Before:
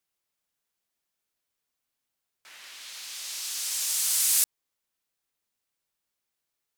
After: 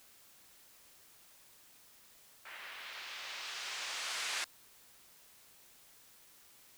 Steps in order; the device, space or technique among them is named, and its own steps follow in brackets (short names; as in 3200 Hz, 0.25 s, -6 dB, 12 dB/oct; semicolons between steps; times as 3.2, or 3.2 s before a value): wax cylinder (BPF 350–2100 Hz; wow and flutter; white noise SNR 14 dB); gain +4.5 dB